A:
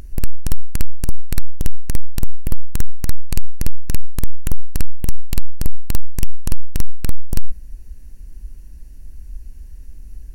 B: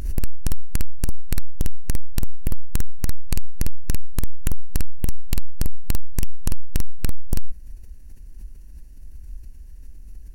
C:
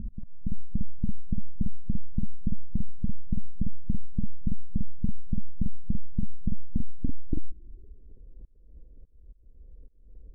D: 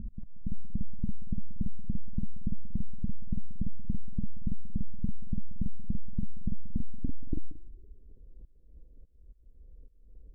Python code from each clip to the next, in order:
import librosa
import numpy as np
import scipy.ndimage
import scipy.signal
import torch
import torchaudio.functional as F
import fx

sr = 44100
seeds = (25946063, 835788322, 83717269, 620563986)

y1 = fx.pre_swell(x, sr, db_per_s=80.0)
y1 = y1 * librosa.db_to_amplitude(-5.5)
y2 = fx.filter_sweep_lowpass(y1, sr, from_hz=210.0, to_hz=490.0, start_s=6.63, end_s=8.28, q=5.1)
y2 = fx.auto_swell(y2, sr, attack_ms=334.0)
y2 = y2 * librosa.db_to_amplitude(-7.5)
y3 = y2 + 10.0 ** (-16.5 / 20.0) * np.pad(y2, (int(181 * sr / 1000.0), 0))[:len(y2)]
y3 = y3 * librosa.db_to_amplitude(-3.5)